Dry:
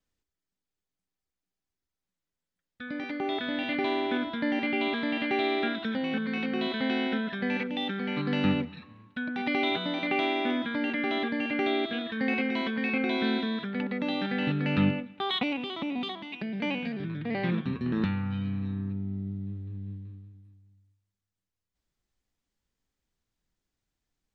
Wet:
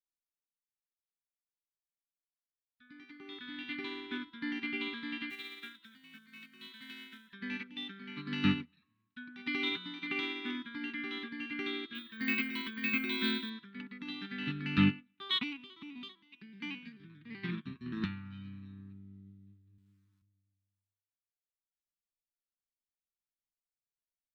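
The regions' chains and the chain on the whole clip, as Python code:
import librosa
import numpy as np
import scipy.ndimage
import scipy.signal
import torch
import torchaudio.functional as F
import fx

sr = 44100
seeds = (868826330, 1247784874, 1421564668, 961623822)

y = fx.chain(x, sr, fx.highpass(hz=110.0, slope=12),
    fx.peak_eq(hz=400.0, db=-11.5, octaves=2.5),
    fx.quant_companded(bits=6), at=(5.3, 7.33))
y = fx.chain(y, sr, fx.high_shelf(hz=3600.0, db=5.0),
    fx.resample_bad(factor=2, down='filtered', up='hold'), at=(11.95, 13.5))
y = fx.chain(y, sr, fx.highpass(hz=100.0, slope=12),
    fx.sample_gate(floor_db=-52.5), at=(19.78, 20.22))
y = scipy.signal.sosfilt(scipy.signal.cheby1(2, 1.0, [340.0, 1100.0], 'bandstop', fs=sr, output='sos'), y)
y = fx.high_shelf(y, sr, hz=2300.0, db=8.0)
y = fx.upward_expand(y, sr, threshold_db=-39.0, expansion=2.5)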